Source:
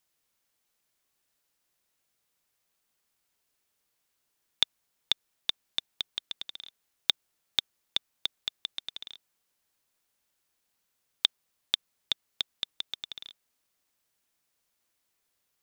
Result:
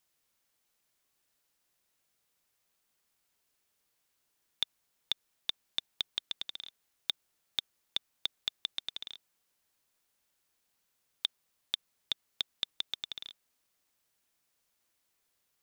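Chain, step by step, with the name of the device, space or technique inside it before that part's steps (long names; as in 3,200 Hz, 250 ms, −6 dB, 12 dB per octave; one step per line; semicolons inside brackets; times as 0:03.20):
soft clipper into limiter (soft clipping −6.5 dBFS, distortion −20 dB; brickwall limiter −14.5 dBFS, peak gain reduction 6.5 dB)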